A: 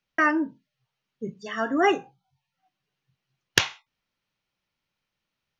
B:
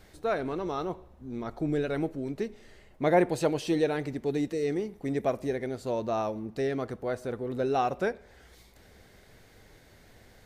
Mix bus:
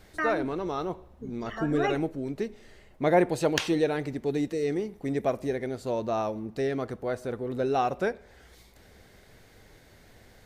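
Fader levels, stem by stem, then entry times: −8.5, +1.0 decibels; 0.00, 0.00 seconds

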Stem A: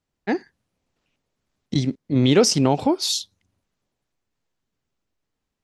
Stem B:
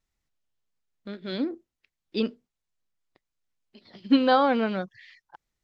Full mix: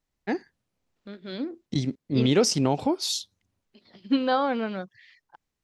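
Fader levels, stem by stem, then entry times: −5.0, −3.5 decibels; 0.00, 0.00 seconds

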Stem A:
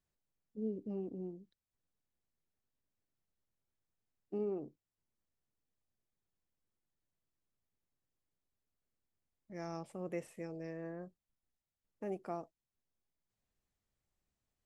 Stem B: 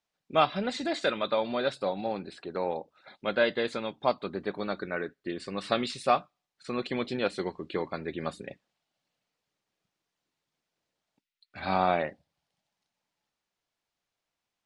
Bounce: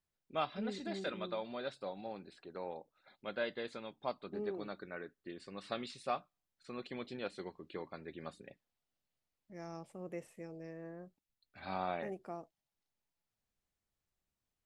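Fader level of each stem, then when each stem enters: −3.5, −12.5 decibels; 0.00, 0.00 seconds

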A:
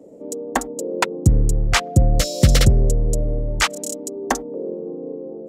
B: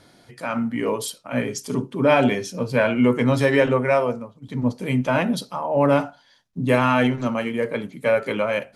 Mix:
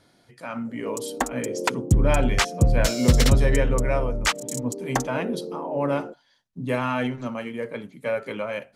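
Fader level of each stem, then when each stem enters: −4.0, −7.0 decibels; 0.65, 0.00 seconds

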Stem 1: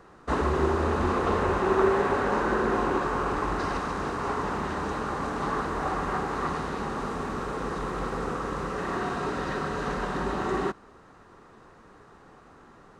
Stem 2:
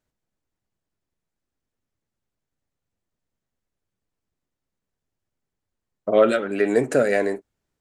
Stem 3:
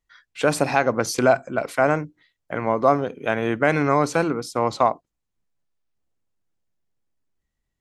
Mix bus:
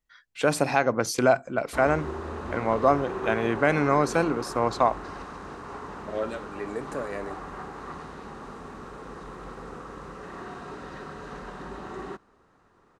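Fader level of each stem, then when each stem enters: −9.5, −14.5, −3.0 decibels; 1.45, 0.00, 0.00 seconds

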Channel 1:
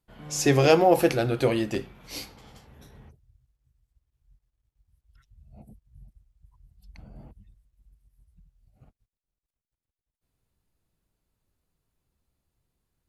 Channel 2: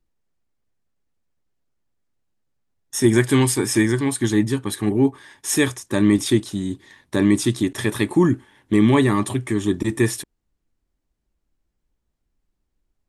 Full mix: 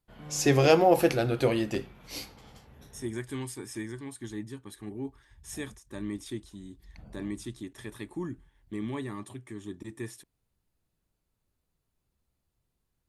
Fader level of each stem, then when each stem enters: −2.0, −19.5 decibels; 0.00, 0.00 seconds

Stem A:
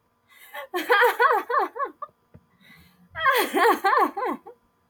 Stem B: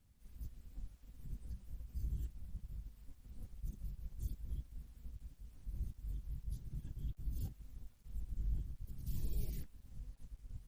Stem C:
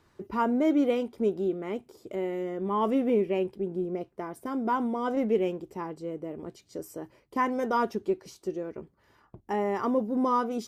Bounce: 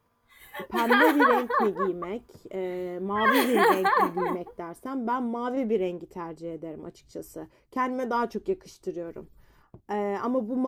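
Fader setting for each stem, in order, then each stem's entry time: −2.5, −20.0, −0.5 decibels; 0.00, 0.00, 0.40 seconds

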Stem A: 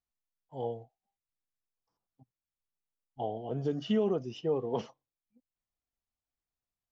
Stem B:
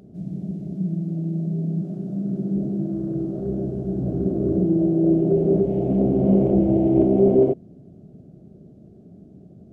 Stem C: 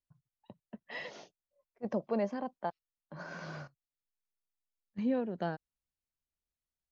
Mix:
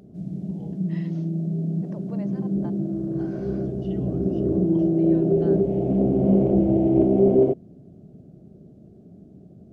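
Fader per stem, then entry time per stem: −14.0, −1.0, −8.0 decibels; 0.00, 0.00, 0.00 seconds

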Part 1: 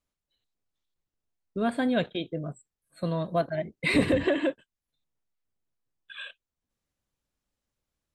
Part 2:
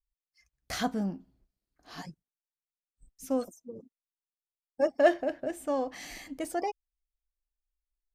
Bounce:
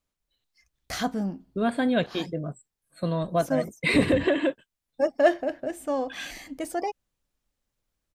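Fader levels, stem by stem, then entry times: +2.0, +2.5 decibels; 0.00, 0.20 seconds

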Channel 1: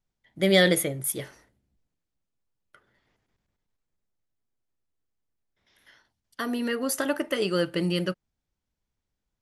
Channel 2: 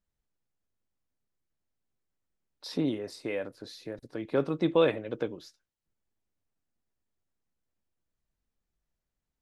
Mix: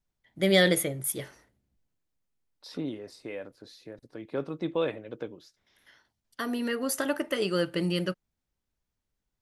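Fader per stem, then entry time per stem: −2.0, −5.0 decibels; 0.00, 0.00 seconds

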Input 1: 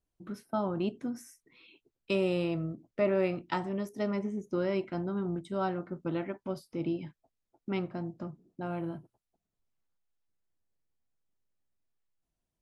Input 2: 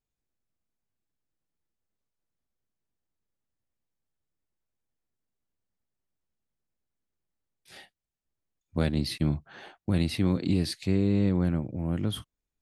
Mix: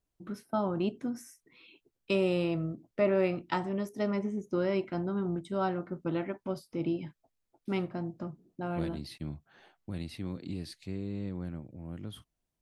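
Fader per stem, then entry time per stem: +1.0, −12.5 decibels; 0.00, 0.00 seconds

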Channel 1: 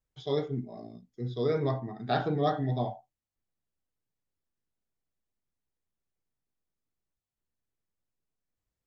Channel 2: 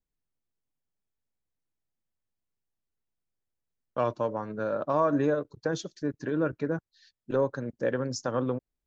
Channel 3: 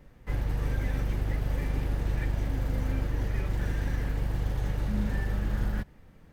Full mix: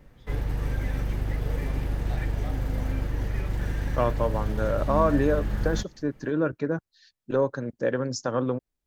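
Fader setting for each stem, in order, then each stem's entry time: −15.5, +2.5, +1.0 decibels; 0.00, 0.00, 0.00 seconds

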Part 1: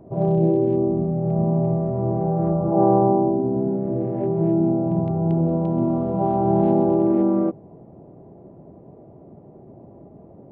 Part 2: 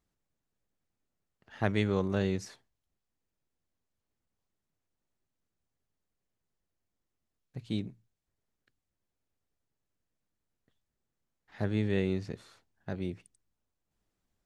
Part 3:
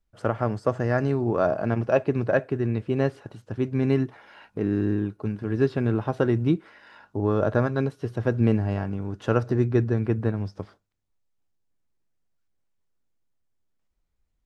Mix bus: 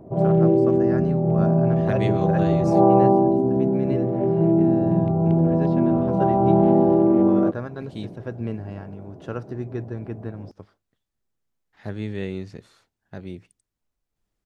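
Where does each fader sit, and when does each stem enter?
+1.5, 0.0, −8.5 decibels; 0.00, 0.25, 0.00 seconds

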